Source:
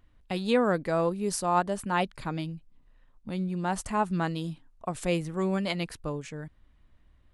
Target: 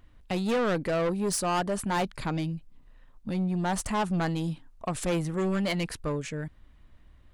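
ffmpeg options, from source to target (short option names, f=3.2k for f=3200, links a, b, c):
-af "asoftclip=type=tanh:threshold=-28.5dB,volume=5.5dB"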